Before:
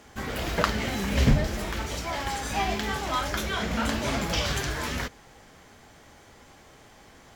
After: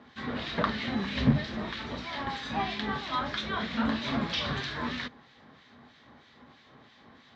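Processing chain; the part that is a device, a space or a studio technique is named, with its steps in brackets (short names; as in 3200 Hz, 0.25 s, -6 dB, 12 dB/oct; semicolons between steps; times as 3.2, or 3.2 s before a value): guitar amplifier with harmonic tremolo (harmonic tremolo 3.1 Hz, depth 70%, crossover 1700 Hz; soft clip -15 dBFS, distortion -16 dB; speaker cabinet 85–4600 Hz, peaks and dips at 140 Hz +5 dB, 240 Hz +10 dB, 1100 Hz +6 dB, 1800 Hz +5 dB, 3800 Hz +10 dB); gain -3 dB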